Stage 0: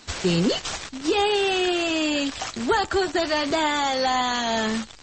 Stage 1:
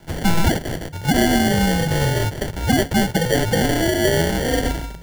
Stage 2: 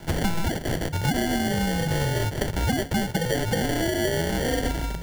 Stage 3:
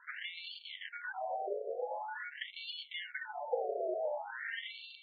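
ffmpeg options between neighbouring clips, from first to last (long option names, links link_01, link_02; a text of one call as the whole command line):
ffmpeg -i in.wav -af "bandreject=frequency=221.8:width_type=h:width=4,bandreject=frequency=443.6:width_type=h:width=4,bandreject=frequency=665.4:width_type=h:width=4,bandreject=frequency=887.2:width_type=h:width=4,bandreject=frequency=1109:width_type=h:width=4,bandreject=frequency=1330.8:width_type=h:width=4,bandreject=frequency=1552.6:width_type=h:width=4,bandreject=frequency=1774.4:width_type=h:width=4,bandreject=frequency=1996.2:width_type=h:width=4,bandreject=frequency=2218:width_type=h:width=4,bandreject=frequency=2439.8:width_type=h:width=4,bandreject=frequency=2661.6:width_type=h:width=4,bandreject=frequency=2883.4:width_type=h:width=4,bandreject=frequency=3105.2:width_type=h:width=4,bandreject=frequency=3327:width_type=h:width=4,bandreject=frequency=3548.8:width_type=h:width=4,bandreject=frequency=3770.6:width_type=h:width=4,bandreject=frequency=3992.4:width_type=h:width=4,bandreject=frequency=4214.2:width_type=h:width=4,bandreject=frequency=4436:width_type=h:width=4,bandreject=frequency=4657.8:width_type=h:width=4,bandreject=frequency=4879.6:width_type=h:width=4,bandreject=frequency=5101.4:width_type=h:width=4,bandreject=frequency=5323.2:width_type=h:width=4,bandreject=frequency=5545:width_type=h:width=4,bandreject=frequency=5766.8:width_type=h:width=4,bandreject=frequency=5988.6:width_type=h:width=4,bandreject=frequency=6210.4:width_type=h:width=4,bandreject=frequency=6432.2:width_type=h:width=4,acrusher=samples=33:mix=1:aa=0.000001,afreqshift=-170,volume=5dB" out.wav
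ffmpeg -i in.wav -af "acompressor=threshold=-26dB:ratio=10,volume=5dB" out.wav
ffmpeg -i in.wav -af "afftfilt=real='re*between(b*sr/1024,500*pow(3300/500,0.5+0.5*sin(2*PI*0.46*pts/sr))/1.41,500*pow(3300/500,0.5+0.5*sin(2*PI*0.46*pts/sr))*1.41)':imag='im*between(b*sr/1024,500*pow(3300/500,0.5+0.5*sin(2*PI*0.46*pts/sr))/1.41,500*pow(3300/500,0.5+0.5*sin(2*PI*0.46*pts/sr))*1.41)':win_size=1024:overlap=0.75,volume=-5dB" out.wav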